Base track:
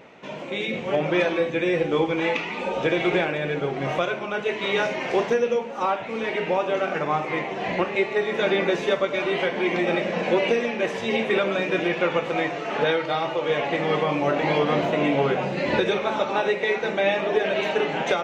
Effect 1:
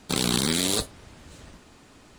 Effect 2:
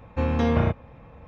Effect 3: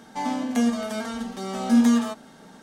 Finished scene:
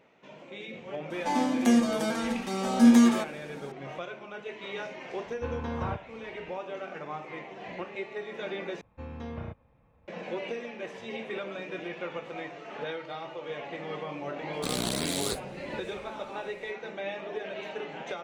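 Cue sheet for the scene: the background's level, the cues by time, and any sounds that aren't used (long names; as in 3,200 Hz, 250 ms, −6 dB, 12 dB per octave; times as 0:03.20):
base track −14 dB
0:01.10: mix in 3
0:05.25: mix in 2 −12.5 dB + hollow resonant body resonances 1,000/1,500 Hz, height 13 dB
0:08.81: overwrite with 2 −17 dB
0:14.53: mix in 1 −7.5 dB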